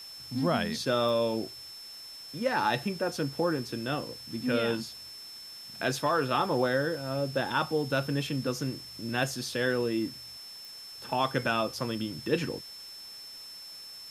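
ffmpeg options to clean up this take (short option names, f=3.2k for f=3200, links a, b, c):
-af "adeclick=t=4,bandreject=f=5.3k:w=30,afwtdn=0.0025"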